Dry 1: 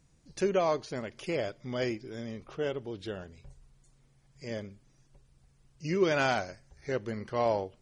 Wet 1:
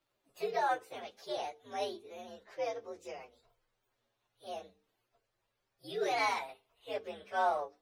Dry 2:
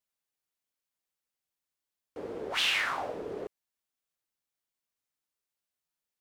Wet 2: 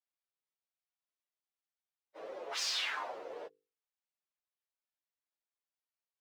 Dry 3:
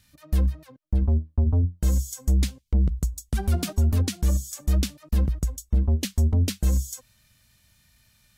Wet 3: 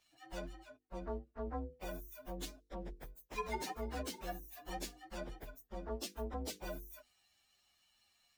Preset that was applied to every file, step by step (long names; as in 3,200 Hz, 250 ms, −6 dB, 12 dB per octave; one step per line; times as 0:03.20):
partials spread apart or drawn together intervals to 124%
three-way crossover with the lows and the highs turned down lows −24 dB, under 370 Hz, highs −12 dB, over 6,200 Hz
mains-hum notches 50/100/150/200/250/300/350/400/450/500 Hz